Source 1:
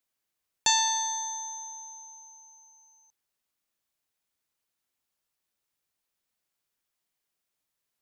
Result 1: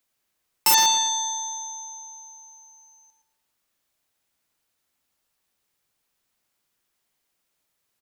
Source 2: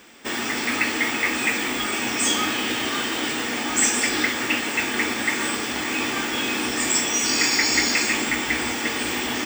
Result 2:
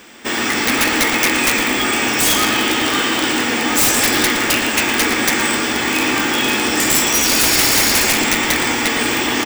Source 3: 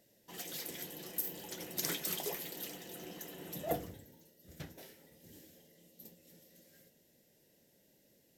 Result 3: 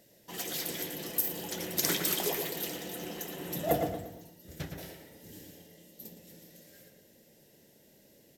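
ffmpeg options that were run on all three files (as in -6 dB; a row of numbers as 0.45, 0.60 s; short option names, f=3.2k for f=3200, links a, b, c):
-filter_complex "[0:a]aeval=exprs='(mod(5.62*val(0)+1,2)-1)/5.62':c=same,asplit=2[a][b];[b]adelay=115,lowpass=f=2.6k:p=1,volume=-4dB,asplit=2[c][d];[d]adelay=115,lowpass=f=2.6k:p=1,volume=0.43,asplit=2[e][f];[f]adelay=115,lowpass=f=2.6k:p=1,volume=0.43,asplit=2[g][h];[h]adelay=115,lowpass=f=2.6k:p=1,volume=0.43,asplit=2[i][j];[j]adelay=115,lowpass=f=2.6k:p=1,volume=0.43[k];[a][c][e][g][i][k]amix=inputs=6:normalize=0,volume=7dB"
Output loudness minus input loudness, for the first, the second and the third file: +7.0, +7.5, +7.5 LU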